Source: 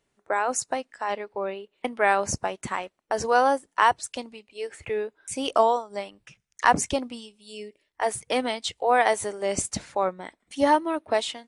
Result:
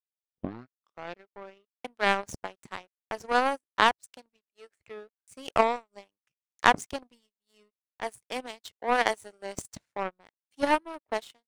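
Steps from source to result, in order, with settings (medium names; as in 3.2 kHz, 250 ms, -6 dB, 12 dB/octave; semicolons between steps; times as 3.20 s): tape start-up on the opening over 1.30 s; power-law waveshaper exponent 2; trim +3.5 dB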